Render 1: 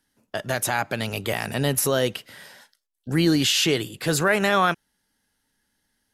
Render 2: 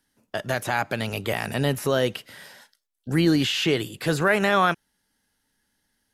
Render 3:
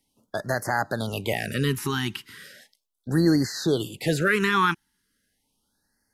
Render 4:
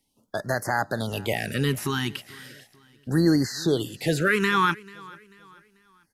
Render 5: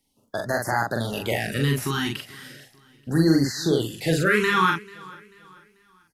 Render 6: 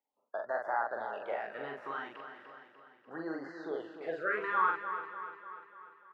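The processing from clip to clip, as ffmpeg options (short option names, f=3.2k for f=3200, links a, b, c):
-filter_complex "[0:a]acrossover=split=3300[a][b];[b]acompressor=threshold=-34dB:ratio=4:attack=1:release=60[c];[a][c]amix=inputs=2:normalize=0"
-af "afftfilt=real='re*(1-between(b*sr/1024,540*pow(3000/540,0.5+0.5*sin(2*PI*0.37*pts/sr))/1.41,540*pow(3000/540,0.5+0.5*sin(2*PI*0.37*pts/sr))*1.41))':imag='im*(1-between(b*sr/1024,540*pow(3000/540,0.5+0.5*sin(2*PI*0.37*pts/sr))/1.41,540*pow(3000/540,0.5+0.5*sin(2*PI*0.37*pts/sr))*1.41))':win_size=1024:overlap=0.75"
-af "aecho=1:1:440|880|1320:0.0794|0.031|0.0121"
-filter_complex "[0:a]asplit=2[a][b];[b]adelay=43,volume=-3dB[c];[a][c]amix=inputs=2:normalize=0"
-filter_complex "[0:a]asuperpass=centerf=890:order=4:qfactor=0.92,asplit=2[a][b];[b]aecho=0:1:296|592|888|1184|1480|1776:0.335|0.184|0.101|0.0557|0.0307|0.0169[c];[a][c]amix=inputs=2:normalize=0,volume=-7dB"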